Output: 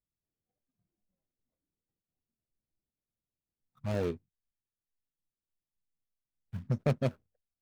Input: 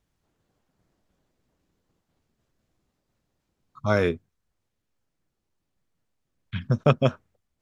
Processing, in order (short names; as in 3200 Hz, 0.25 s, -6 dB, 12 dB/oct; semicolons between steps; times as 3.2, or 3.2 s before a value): median filter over 41 samples; spectral noise reduction 12 dB; gain -7.5 dB